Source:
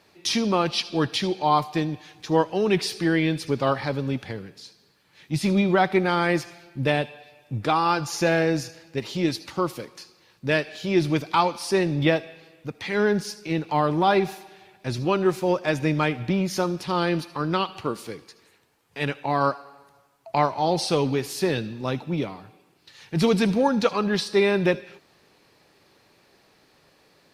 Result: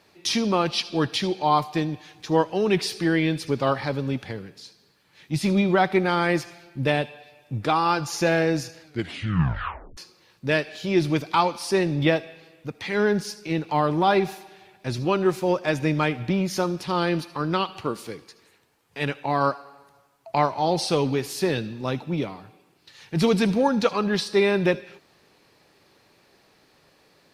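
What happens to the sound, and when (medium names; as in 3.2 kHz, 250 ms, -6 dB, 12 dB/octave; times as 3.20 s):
8.81 s: tape stop 1.16 s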